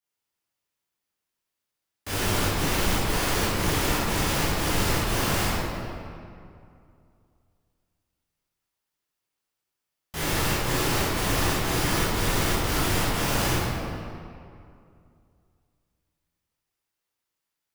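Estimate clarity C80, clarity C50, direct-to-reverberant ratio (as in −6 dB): −1.5 dB, −4.0 dB, −11.0 dB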